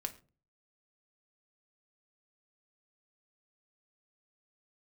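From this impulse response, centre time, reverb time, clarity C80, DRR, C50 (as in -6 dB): 6 ms, 0.35 s, 20.0 dB, 5.0 dB, 16.0 dB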